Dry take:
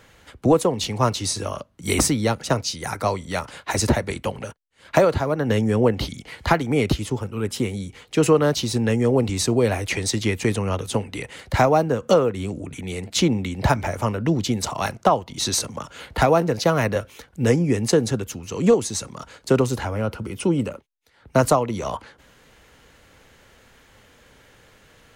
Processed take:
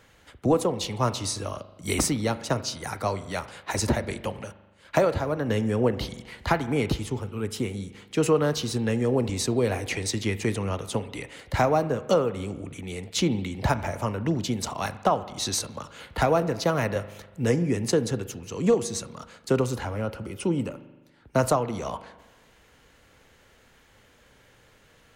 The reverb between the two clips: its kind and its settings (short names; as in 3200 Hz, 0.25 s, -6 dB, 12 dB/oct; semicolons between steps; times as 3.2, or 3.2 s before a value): spring tank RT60 1.2 s, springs 40 ms, chirp 40 ms, DRR 13.5 dB; gain -5 dB